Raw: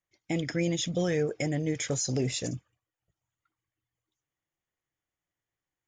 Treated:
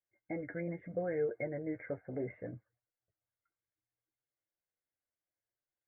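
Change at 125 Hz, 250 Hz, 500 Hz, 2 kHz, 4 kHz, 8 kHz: −14.0 dB, −10.5 dB, −5.5 dB, −9.0 dB, below −40 dB, below −40 dB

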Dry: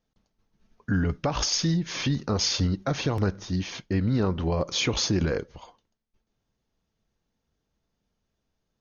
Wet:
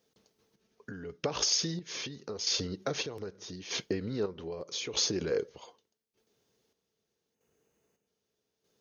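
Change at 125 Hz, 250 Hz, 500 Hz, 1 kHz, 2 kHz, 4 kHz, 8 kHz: −16.0 dB, −12.0 dB, −4.5 dB, −10.0 dB, −8.0 dB, −3.5 dB, can't be measured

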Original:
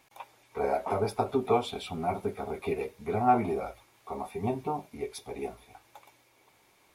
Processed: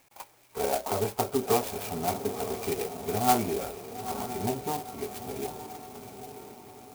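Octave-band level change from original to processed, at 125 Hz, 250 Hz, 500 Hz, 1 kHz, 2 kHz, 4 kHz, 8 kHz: +0.5, +0.5, +0.5, 0.0, +2.0, +5.5, +15.0 decibels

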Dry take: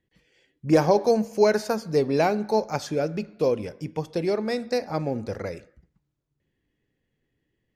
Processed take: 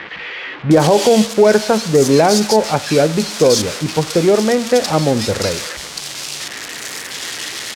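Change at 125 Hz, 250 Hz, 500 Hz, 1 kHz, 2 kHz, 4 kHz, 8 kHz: +11.5, +11.0, +10.0, +10.0, +12.5, +19.0, +22.0 decibels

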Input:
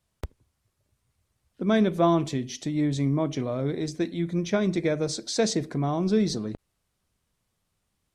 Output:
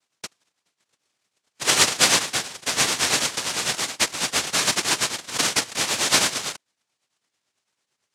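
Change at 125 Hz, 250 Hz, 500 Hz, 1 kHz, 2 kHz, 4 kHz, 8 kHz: −11.0, −11.0, −6.0, +5.0, +14.5, +16.0, +17.5 decibels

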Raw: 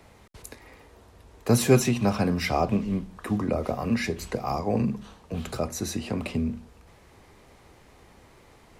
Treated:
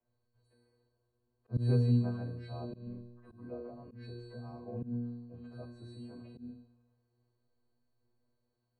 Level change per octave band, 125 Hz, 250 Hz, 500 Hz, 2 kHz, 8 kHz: −5.0 dB, −12.5 dB, −16.0 dB, −23.5 dB, below −35 dB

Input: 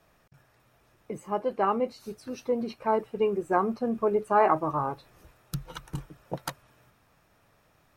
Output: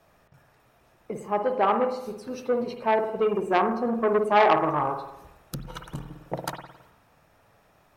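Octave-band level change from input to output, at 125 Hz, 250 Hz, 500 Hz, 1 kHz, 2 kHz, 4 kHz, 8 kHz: +0.5 dB, +2.0 dB, +3.0 dB, +3.5 dB, +6.5 dB, +6.5 dB, can't be measured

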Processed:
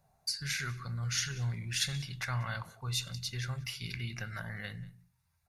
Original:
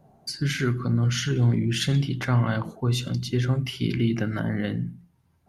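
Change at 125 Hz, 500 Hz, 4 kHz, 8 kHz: −13.5, −20.0, −4.5, −0.5 decibels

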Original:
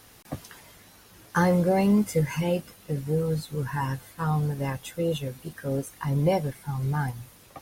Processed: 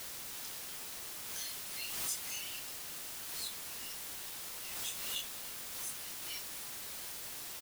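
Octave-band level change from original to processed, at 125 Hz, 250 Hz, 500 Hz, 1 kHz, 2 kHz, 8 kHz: −36.0, −33.0, −29.0, −20.5, −10.5, +4.5 decibels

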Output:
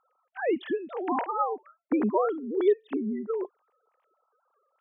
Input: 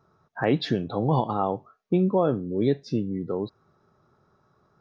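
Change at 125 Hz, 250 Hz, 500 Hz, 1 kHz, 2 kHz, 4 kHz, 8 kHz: below −20 dB, −4.0 dB, −1.0 dB, −1.0 dB, −1.5 dB, below −10 dB, can't be measured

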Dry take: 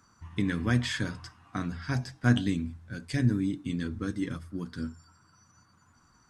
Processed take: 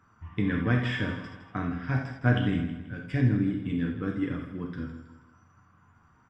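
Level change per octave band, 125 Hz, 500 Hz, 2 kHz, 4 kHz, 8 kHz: +2.0 dB, +4.0 dB, +2.0 dB, −3.0 dB, below −15 dB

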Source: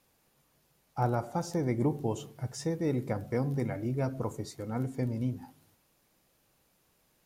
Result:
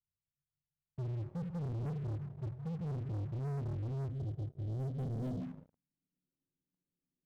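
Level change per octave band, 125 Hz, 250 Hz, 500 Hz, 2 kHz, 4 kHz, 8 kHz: −3.0 dB, −9.5 dB, −13.5 dB, below −15 dB, below −15 dB, below −20 dB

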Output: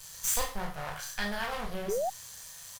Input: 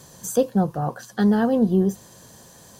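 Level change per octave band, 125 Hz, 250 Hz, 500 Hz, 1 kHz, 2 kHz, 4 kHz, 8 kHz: −19.5 dB, −23.0 dB, −12.0 dB, −6.5 dB, +0.5 dB, +3.5 dB, can't be measured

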